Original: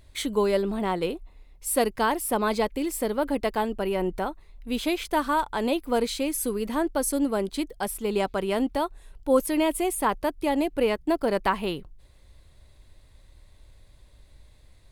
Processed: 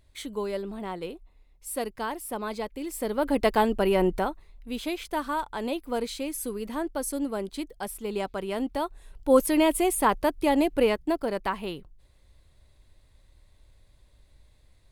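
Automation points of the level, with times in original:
0:02.74 −8 dB
0:03.47 +4 dB
0:04.05 +4 dB
0:04.73 −5 dB
0:08.53 −5 dB
0:09.38 +2 dB
0:10.78 +2 dB
0:11.34 −5 dB

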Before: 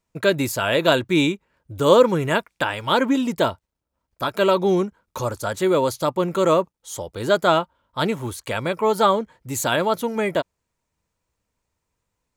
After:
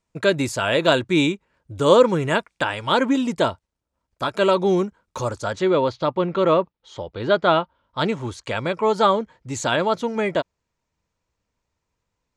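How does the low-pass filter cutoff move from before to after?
low-pass filter 24 dB per octave
0:05.28 9,200 Hz
0:05.84 4,200 Hz
0:07.53 4,200 Hz
0:08.06 7,000 Hz

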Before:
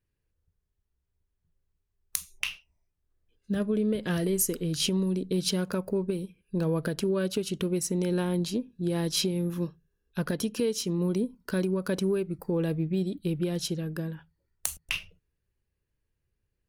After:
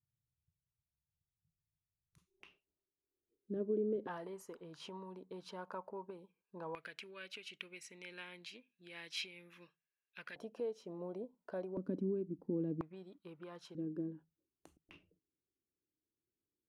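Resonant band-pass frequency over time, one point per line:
resonant band-pass, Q 4.1
130 Hz
from 0:02.18 360 Hz
from 0:04.07 930 Hz
from 0:06.75 2,300 Hz
from 0:10.36 690 Hz
from 0:11.77 270 Hz
from 0:12.81 1,100 Hz
from 0:13.75 310 Hz

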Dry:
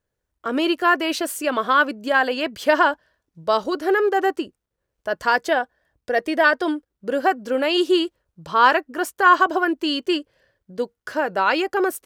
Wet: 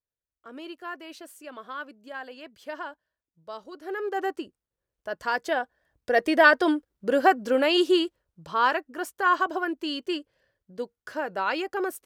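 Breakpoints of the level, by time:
0:03.69 −19.5 dB
0:04.19 −8.5 dB
0:05.29 −8.5 dB
0:06.27 0 dB
0:07.43 0 dB
0:08.71 −8 dB

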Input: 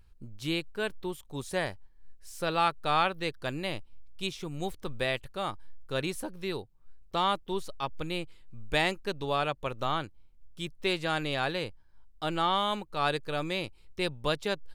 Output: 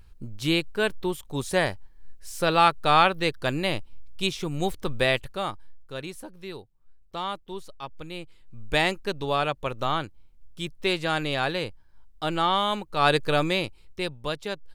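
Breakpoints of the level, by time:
0:05.18 +7.5 dB
0:05.94 −4 dB
0:08.11 −4 dB
0:08.68 +4 dB
0:12.86 +4 dB
0:13.24 +11 dB
0:14.19 −1 dB

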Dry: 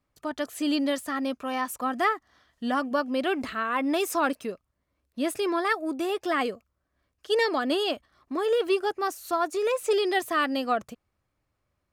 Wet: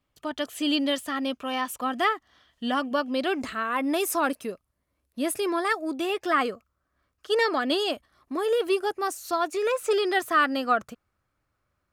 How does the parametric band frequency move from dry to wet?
parametric band +8 dB 0.5 octaves
0:03.08 3,100 Hz
0:03.64 11,000 Hz
0:05.57 11,000 Hz
0:06.35 1,300 Hz
0:07.52 1,300 Hz
0:07.94 11,000 Hz
0:09.05 11,000 Hz
0:09.70 1,400 Hz

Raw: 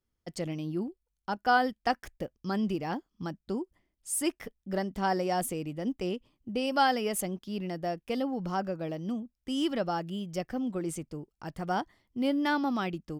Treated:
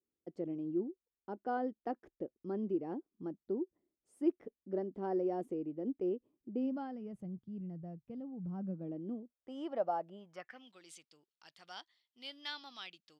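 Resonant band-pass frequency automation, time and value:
resonant band-pass, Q 2.5
0:06.49 360 Hz
0:06.98 130 Hz
0:08.46 130 Hz
0:09.52 680 Hz
0:10.15 680 Hz
0:10.73 3,800 Hz

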